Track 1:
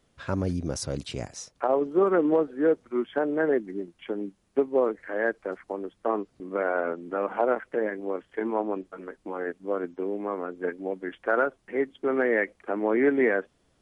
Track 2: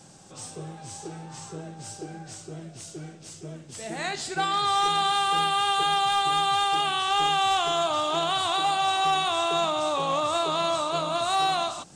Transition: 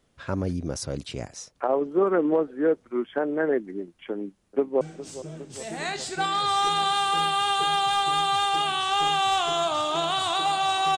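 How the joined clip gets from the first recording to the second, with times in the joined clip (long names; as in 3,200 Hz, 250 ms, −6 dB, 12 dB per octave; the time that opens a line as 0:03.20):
track 1
0:04.12–0:04.81: delay throw 410 ms, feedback 70%, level −15 dB
0:04.81: continue with track 2 from 0:03.00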